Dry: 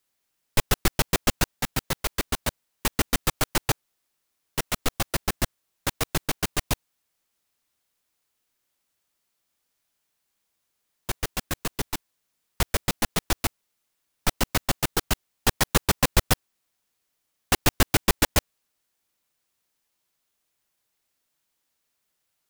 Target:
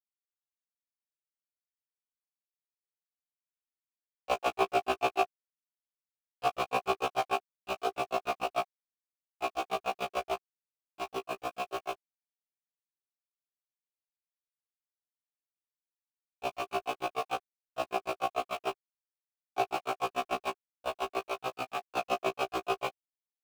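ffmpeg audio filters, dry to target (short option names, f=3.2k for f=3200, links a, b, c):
-filter_complex "[0:a]areverse,asplit=2[a][b];[b]acompressor=threshold=-28dB:ratio=6,volume=2dB[c];[a][c]amix=inputs=2:normalize=0,equalizer=f=410:t=o:w=0.25:g=11.5,asetrate=42336,aresample=44100,asplit=3[d][e][f];[d]bandpass=f=730:t=q:w=8,volume=0dB[g];[e]bandpass=f=1.09k:t=q:w=8,volume=-6dB[h];[f]bandpass=f=2.44k:t=q:w=8,volume=-9dB[i];[g][h][i]amix=inputs=3:normalize=0,acrusher=bits=7:mix=0:aa=0.5,afftfilt=real='re*1.73*eq(mod(b,3),0)':imag='im*1.73*eq(mod(b,3),0)':win_size=2048:overlap=0.75,volume=5.5dB"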